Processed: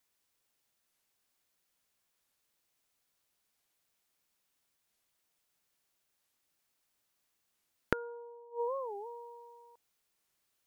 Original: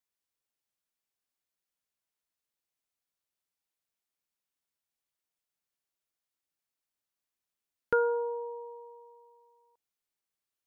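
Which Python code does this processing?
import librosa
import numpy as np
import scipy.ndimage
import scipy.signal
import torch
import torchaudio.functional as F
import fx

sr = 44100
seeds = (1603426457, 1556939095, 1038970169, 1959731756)

y = fx.gate_flip(x, sr, shuts_db=-34.0, range_db=-26)
y = fx.record_warp(y, sr, rpm=45.0, depth_cents=250.0)
y = y * 10.0 ** (10.0 / 20.0)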